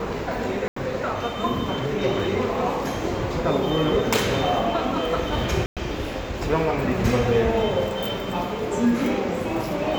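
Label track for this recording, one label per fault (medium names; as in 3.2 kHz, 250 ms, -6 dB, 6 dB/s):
0.680000	0.760000	dropout 84 ms
5.660000	5.770000	dropout 107 ms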